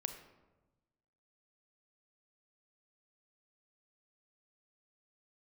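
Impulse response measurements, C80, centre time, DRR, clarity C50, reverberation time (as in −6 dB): 10.5 dB, 17 ms, 7.0 dB, 8.5 dB, 1.1 s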